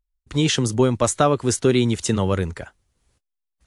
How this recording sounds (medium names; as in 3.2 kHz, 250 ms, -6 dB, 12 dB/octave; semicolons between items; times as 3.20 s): noise floor -81 dBFS; spectral tilt -5.0 dB/octave